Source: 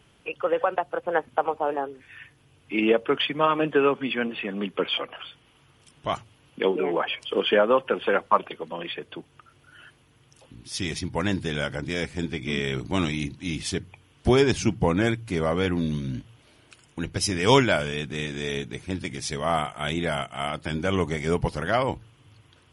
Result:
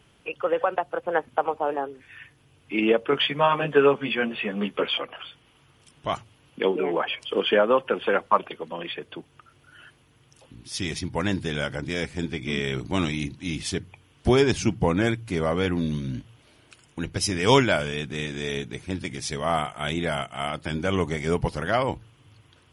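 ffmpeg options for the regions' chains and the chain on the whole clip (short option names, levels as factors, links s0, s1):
-filter_complex "[0:a]asettb=1/sr,asplit=3[s0][s1][s2];[s0]atrim=end=3.114[s3];[s1]atrim=start=3.11:end=4.92,asetpts=PTS-STARTPTS,afade=t=in:d=0.004:c=qsin,afade=t=out:st=1.806:d=0.004:c=qsin,equalizer=f=310:w=5.1:g=-8,asplit=2[s4][s5];[s5]adelay=14,volume=0.794[s6];[s4][s6]amix=inputs=2:normalize=0,atrim=end_sample=79821[s7];[s2]atrim=start=4.916[s8];[s3][s7]acrossfade=d=0.004:c1=hsin:c2=qsin[s9];[s9][s8]acrossfade=d=0.004:c1=qsin:c2=hsin"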